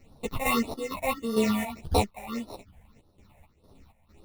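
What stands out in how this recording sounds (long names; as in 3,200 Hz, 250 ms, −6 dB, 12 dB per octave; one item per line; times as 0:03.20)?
aliases and images of a low sample rate 1,600 Hz, jitter 0%
phaser sweep stages 6, 1.7 Hz, lowest notch 320–2,300 Hz
chopped level 2.2 Hz, depth 65%, duty 60%
a shimmering, thickened sound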